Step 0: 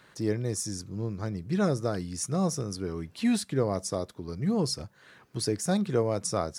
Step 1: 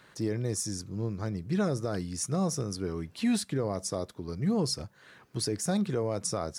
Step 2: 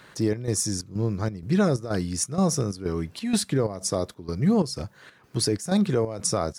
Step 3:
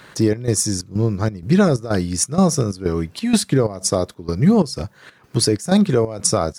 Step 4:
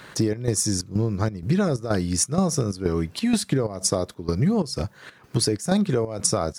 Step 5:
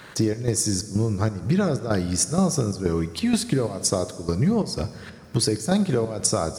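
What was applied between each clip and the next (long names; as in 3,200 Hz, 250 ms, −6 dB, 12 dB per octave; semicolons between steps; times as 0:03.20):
brickwall limiter −20 dBFS, peak gain reduction 6 dB
square-wave tremolo 2.1 Hz, depth 65%, duty 70%; level +7 dB
transient designer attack +2 dB, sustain −3 dB; level +6.5 dB
downward compressor, threshold −18 dBFS, peak gain reduction 9 dB
convolution reverb RT60 2.1 s, pre-delay 8 ms, DRR 12.5 dB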